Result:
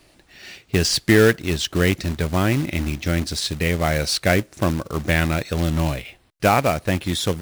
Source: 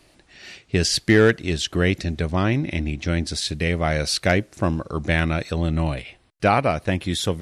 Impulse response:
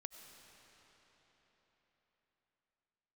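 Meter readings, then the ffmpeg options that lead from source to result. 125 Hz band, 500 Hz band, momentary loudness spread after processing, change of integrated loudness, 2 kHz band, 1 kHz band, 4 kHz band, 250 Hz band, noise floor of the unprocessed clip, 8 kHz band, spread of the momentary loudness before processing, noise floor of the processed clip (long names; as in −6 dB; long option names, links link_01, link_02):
+1.0 dB, +1.0 dB, 8 LU, +1.5 dB, +1.0 dB, +1.0 dB, +1.5 dB, +1.0 dB, −57 dBFS, +2.5 dB, 8 LU, −56 dBFS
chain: -af "acrusher=bits=3:mode=log:mix=0:aa=0.000001,volume=1dB"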